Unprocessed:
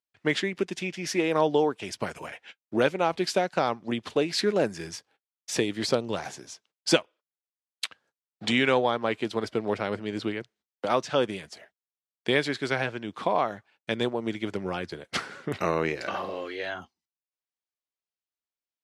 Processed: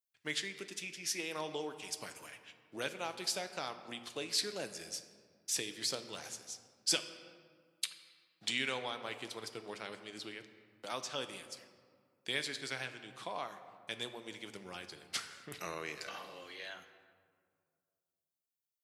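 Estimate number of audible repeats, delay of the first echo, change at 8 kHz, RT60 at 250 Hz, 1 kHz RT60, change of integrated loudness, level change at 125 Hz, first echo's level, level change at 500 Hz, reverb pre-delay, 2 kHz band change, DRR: no echo audible, no echo audible, −0.5 dB, 2.3 s, 2.0 s, −11.5 dB, −18.0 dB, no echo audible, −17.5 dB, 6 ms, −10.5 dB, 8.5 dB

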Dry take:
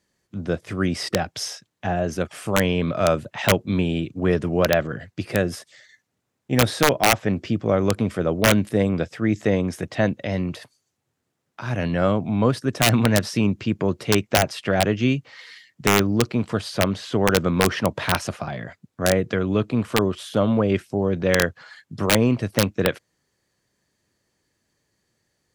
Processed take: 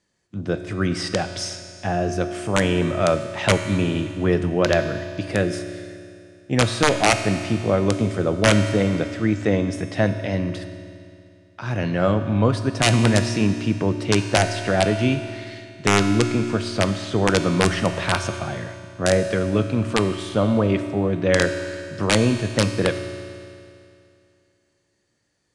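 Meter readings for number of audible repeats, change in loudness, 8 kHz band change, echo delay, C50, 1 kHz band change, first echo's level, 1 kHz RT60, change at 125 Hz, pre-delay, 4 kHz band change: no echo audible, +1.0 dB, +0.5 dB, no echo audible, 8.5 dB, +0.5 dB, no echo audible, 2.5 s, +2.0 dB, 3 ms, +1.0 dB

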